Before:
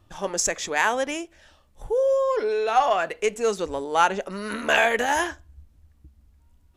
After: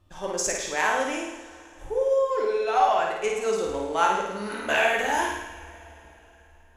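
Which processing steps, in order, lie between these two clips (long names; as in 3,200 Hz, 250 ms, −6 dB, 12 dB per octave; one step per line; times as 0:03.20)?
flutter between parallel walls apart 9.2 metres, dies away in 0.8 s
coupled-rooms reverb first 0.43 s, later 3.7 s, from −18 dB, DRR 4 dB
level −5.5 dB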